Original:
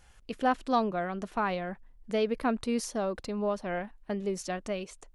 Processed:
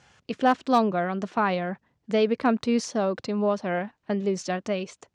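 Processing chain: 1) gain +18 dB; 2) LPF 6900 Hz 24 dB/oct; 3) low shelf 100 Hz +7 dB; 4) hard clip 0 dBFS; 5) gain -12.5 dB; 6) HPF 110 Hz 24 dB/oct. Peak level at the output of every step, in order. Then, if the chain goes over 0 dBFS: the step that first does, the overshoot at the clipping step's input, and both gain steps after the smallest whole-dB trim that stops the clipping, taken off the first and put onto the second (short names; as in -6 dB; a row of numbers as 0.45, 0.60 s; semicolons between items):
+2.5, +2.5, +3.0, 0.0, -12.5, -9.0 dBFS; step 1, 3.0 dB; step 1 +15 dB, step 5 -9.5 dB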